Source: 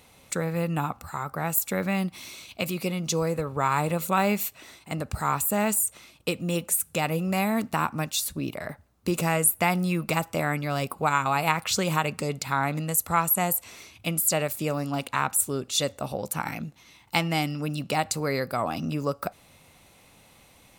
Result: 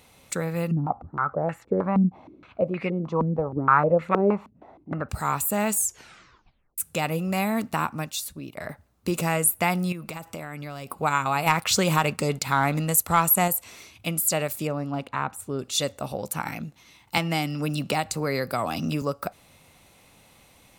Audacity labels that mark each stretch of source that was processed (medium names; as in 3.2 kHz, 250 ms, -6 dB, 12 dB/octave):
0.710000	5.090000	step-sequenced low-pass 6.4 Hz 230–1900 Hz
5.720000	5.720000	tape stop 1.06 s
7.790000	8.570000	fade out, to -10 dB
9.920000	10.880000	compression, threshold -32 dBFS
11.460000	13.480000	waveshaping leveller passes 1
14.670000	15.590000	low-pass 1.4 kHz 6 dB/octave
17.170000	19.020000	three bands compressed up and down depth 70%